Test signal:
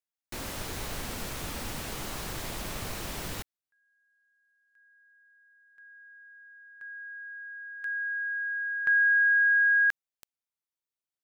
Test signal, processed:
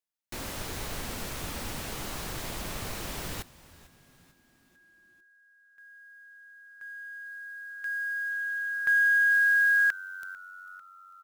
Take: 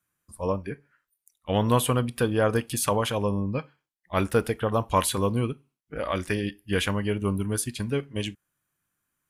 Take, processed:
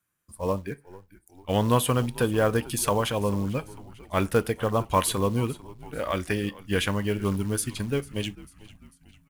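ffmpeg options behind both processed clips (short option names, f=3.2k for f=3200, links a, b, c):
-filter_complex "[0:a]asplit=5[a][b][c][d][e];[b]adelay=446,afreqshift=-93,volume=-19.5dB[f];[c]adelay=892,afreqshift=-186,volume=-25.2dB[g];[d]adelay=1338,afreqshift=-279,volume=-30.9dB[h];[e]adelay=1784,afreqshift=-372,volume=-36.5dB[i];[a][f][g][h][i]amix=inputs=5:normalize=0,acrusher=bits=6:mode=log:mix=0:aa=0.000001"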